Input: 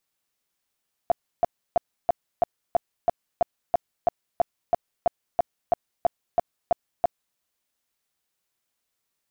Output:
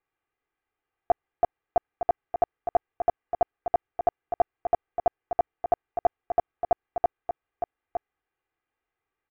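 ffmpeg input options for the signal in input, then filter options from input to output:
-f lavfi -i "aevalsrc='0.188*sin(2*PI*691*mod(t,0.33))*lt(mod(t,0.33),11/691)':d=6.27:s=44100"
-af "lowpass=f=2.3k:w=0.5412,lowpass=f=2.3k:w=1.3066,aecho=1:1:2.5:0.67,aecho=1:1:911:0.398"

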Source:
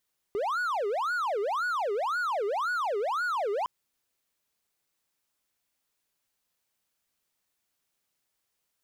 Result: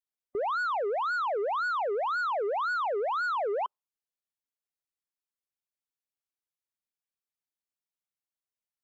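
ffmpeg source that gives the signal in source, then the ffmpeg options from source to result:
-f lavfi -i "aevalsrc='0.0596*(1-4*abs(mod((934*t-536/(2*PI*1.9)*sin(2*PI*1.9*t))+0.25,1)-0.5))':d=3.31:s=44100"
-af "afftdn=nr=19:nf=-43"

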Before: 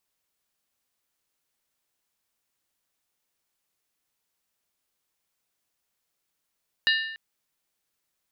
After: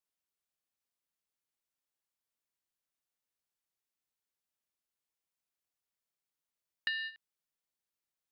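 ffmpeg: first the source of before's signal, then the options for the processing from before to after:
-f lavfi -i "aevalsrc='0.112*pow(10,-3*t/0.88)*sin(2*PI*1790*t)+0.0794*pow(10,-3*t/0.697)*sin(2*PI*2853.3*t)+0.0562*pow(10,-3*t/0.602)*sin(2*PI*3823.4*t)+0.0398*pow(10,-3*t/0.581)*sin(2*PI*4109.8*t)+0.0282*pow(10,-3*t/0.54)*sin(2*PI*4748.9*t)':d=0.29:s=44100"
-filter_complex "[0:a]acrossover=split=3300[a][b];[b]acompressor=threshold=-39dB:ratio=4:attack=1:release=60[c];[a][c]amix=inputs=2:normalize=0,agate=range=-13dB:threshold=-33dB:ratio=16:detection=peak,acompressor=threshold=-34dB:ratio=4"

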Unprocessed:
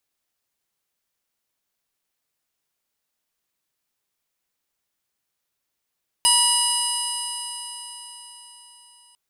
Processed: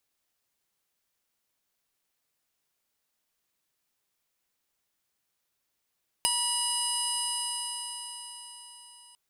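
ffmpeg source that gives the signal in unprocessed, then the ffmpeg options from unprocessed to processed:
-f lavfi -i "aevalsrc='0.0708*pow(10,-3*t/4.47)*sin(2*PI*958.82*t)+0.0133*pow(10,-3*t/4.47)*sin(2*PI*1928.49*t)+0.112*pow(10,-3*t/4.47)*sin(2*PI*2919.68*t)+0.0237*pow(10,-3*t/4.47)*sin(2*PI*3942.65*t)+0.0944*pow(10,-3*t/4.47)*sin(2*PI*5007.13*t)+0.0158*pow(10,-3*t/4.47)*sin(2*PI*6122.17*t)+0.0106*pow(10,-3*t/4.47)*sin(2*PI*7296.07*t)+0.106*pow(10,-3*t/4.47)*sin(2*PI*8536.35*t)+0.112*pow(10,-3*t/4.47)*sin(2*PI*9849.75*t)+0.0168*pow(10,-3*t/4.47)*sin(2*PI*11242.2*t)+0.0126*pow(10,-3*t/4.47)*sin(2*PI*12718.95*t)':d=2.9:s=44100"
-af "acompressor=threshold=-26dB:ratio=6"

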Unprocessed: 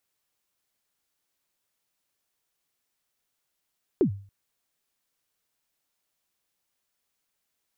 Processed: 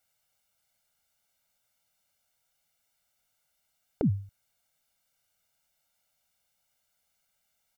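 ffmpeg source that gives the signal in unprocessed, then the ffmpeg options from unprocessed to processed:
-f lavfi -i "aevalsrc='0.188*pow(10,-3*t/0.43)*sin(2*PI*(430*0.093/log(99/430)*(exp(log(99/430)*min(t,0.093)/0.093)-1)+99*max(t-0.093,0)))':d=0.28:s=44100"
-af "aecho=1:1:1.4:0.99"

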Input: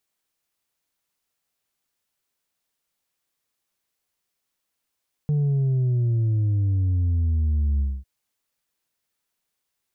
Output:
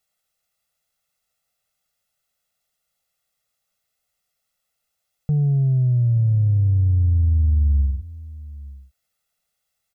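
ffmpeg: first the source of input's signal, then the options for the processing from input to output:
-f lavfi -i "aevalsrc='0.112*clip((2.75-t)/0.24,0,1)*tanh(1.41*sin(2*PI*150*2.75/log(65/150)*(exp(log(65/150)*t/2.75)-1)))/tanh(1.41)':d=2.75:s=44100"
-filter_complex "[0:a]aecho=1:1:1.5:0.87,asplit=2[a][b];[b]adelay=874.6,volume=-19dB,highshelf=f=4k:g=-19.7[c];[a][c]amix=inputs=2:normalize=0"

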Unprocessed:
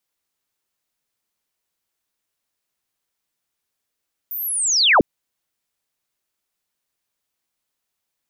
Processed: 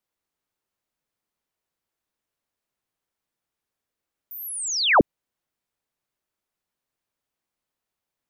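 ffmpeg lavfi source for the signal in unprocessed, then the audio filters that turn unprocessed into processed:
-f lavfi -i "aevalsrc='pow(10,(-25.5+17*t/0.7)/20)*sin(2*PI*(15000*t-14830*t*t/(2*0.7)))':d=0.7:s=44100"
-af "highshelf=f=2.1k:g=-9"

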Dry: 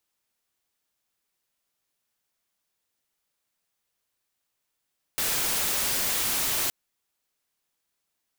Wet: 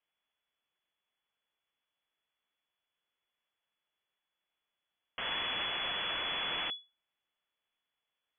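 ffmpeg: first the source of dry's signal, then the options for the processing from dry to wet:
-f lavfi -i "anoisesrc=c=white:a=0.0819:d=1.52:r=44100:seed=1"
-af "aeval=exprs='if(lt(val(0),0),0.447*val(0),val(0))':c=same,lowpass=f=2.9k:t=q:w=0.5098,lowpass=f=2.9k:t=q:w=0.6013,lowpass=f=2.9k:t=q:w=0.9,lowpass=f=2.9k:t=q:w=2.563,afreqshift=-3400"

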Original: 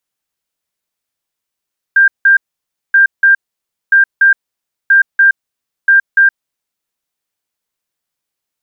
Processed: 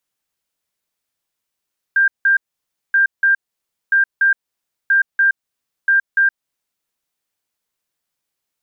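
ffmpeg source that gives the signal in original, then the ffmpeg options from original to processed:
-f lavfi -i "aevalsrc='0.631*sin(2*PI*1590*t)*clip(min(mod(mod(t,0.98),0.29),0.12-mod(mod(t,0.98),0.29))/0.005,0,1)*lt(mod(t,0.98),0.58)':d=4.9:s=44100"
-af "alimiter=limit=-10dB:level=0:latency=1:release=228"

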